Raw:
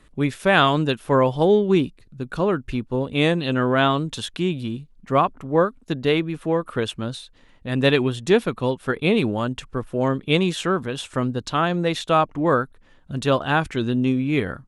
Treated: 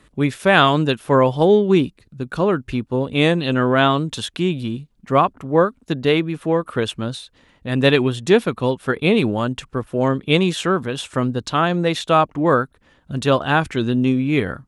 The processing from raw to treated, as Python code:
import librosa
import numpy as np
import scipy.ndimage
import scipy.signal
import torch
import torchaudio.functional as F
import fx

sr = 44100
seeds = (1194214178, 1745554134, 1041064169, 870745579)

y = scipy.signal.sosfilt(scipy.signal.butter(2, 44.0, 'highpass', fs=sr, output='sos'), x)
y = F.gain(torch.from_numpy(y), 3.0).numpy()